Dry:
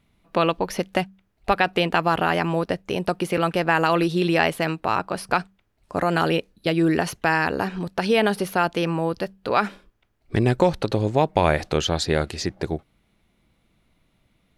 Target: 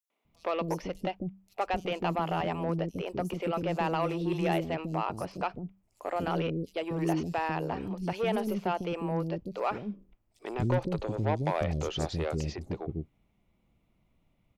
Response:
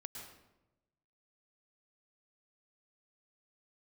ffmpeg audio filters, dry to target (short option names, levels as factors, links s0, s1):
-filter_complex "[0:a]equalizer=f=1600:t=o:w=0.67:g=-10,equalizer=f=4000:t=o:w=0.67:g=-9,equalizer=f=10000:t=o:w=0.67:g=-11,asoftclip=type=tanh:threshold=0.168,acrossover=split=370|5500[s0][s1][s2];[s1]adelay=100[s3];[s0]adelay=250[s4];[s4][s3][s2]amix=inputs=3:normalize=0,volume=0.596"